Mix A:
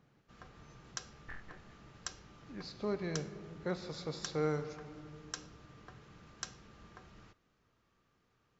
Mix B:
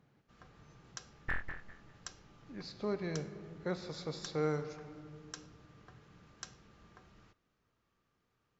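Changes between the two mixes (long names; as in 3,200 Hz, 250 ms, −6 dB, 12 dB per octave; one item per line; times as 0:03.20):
first sound −4.5 dB
second sound +12.0 dB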